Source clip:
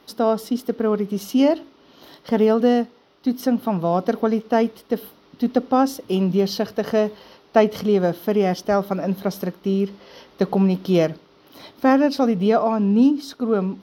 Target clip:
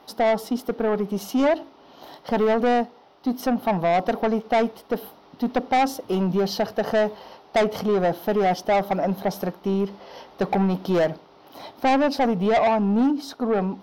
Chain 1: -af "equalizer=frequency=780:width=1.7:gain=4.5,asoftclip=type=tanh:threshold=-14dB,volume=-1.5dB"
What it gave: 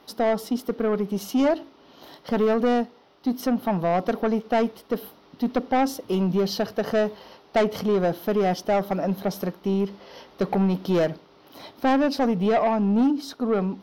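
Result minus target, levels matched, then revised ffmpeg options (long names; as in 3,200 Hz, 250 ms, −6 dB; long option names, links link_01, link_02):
1,000 Hz band −2.5 dB
-af "equalizer=frequency=780:width=1.7:gain=11.5,asoftclip=type=tanh:threshold=-14dB,volume=-1.5dB"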